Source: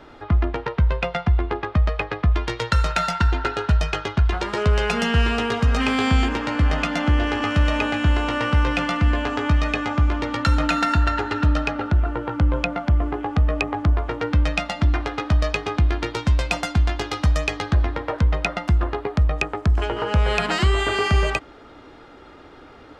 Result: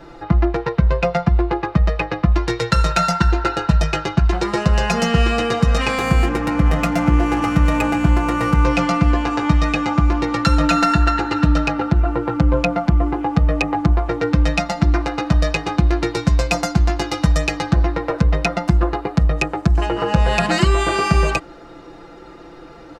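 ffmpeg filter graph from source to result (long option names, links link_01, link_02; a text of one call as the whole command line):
ffmpeg -i in.wav -filter_complex "[0:a]asettb=1/sr,asplit=3[link_01][link_02][link_03];[link_01]atrim=end=5.984[link_04];[link_02]atrim=start=5.98:end=8.65,asetpts=PTS-STARTPTS,afade=type=in:duration=0.004:curve=qsin,afade=type=out:start_time=2.666:duration=0.004:curve=qsin,adynamicsmooth=sensitivity=3:basefreq=2500,aeval=exprs='val(0)+0.02*(sin(2*PI*60*n/s)+sin(2*PI*2*60*n/s)/2+sin(2*PI*3*60*n/s)/3+sin(2*PI*4*60*n/s)/4+sin(2*PI*5*60*n/s)/5)':channel_layout=same,equalizer=frequency=4200:width=1.4:gain=-4.5[link_05];[link_03]atrim=start=8.646[link_06];[link_04][link_05]acrossfade=duration=0.004:curve1=hsin:curve2=qsin[link_07];[link_07][link_06]acrossfade=duration=0.004:curve1=qsin:curve2=hsin,equalizer=frequency=1800:width=0.62:gain=-5,bandreject=frequency=3300:width=10,aecho=1:1:5.9:0.87,volume=4.5dB" out.wav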